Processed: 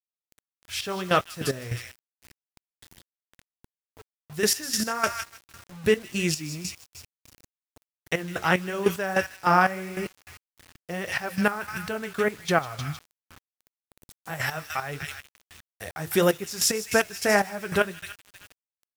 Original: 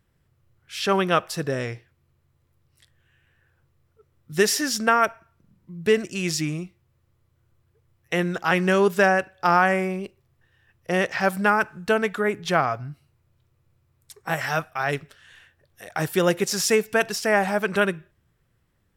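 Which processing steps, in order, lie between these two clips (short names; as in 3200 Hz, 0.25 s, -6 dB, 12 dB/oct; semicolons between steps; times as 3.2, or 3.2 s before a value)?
high shelf 8900 Hz +5.5 dB; on a send: thin delay 0.156 s, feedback 47%, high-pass 2600 Hz, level -3.5 dB; on the sum: vibrato 1.8 Hz 8.7 cents; flange 1.6 Hz, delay 7.4 ms, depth 5.3 ms, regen -57%; bell 79 Hz +14.5 dB 0.88 oct; step gate "x..x..xx..." 149 bpm -12 dB; in parallel at -2 dB: compressor, threshold -37 dBFS, peak gain reduction 18.5 dB; on the sum: bit-crush 8-bit; gain +2 dB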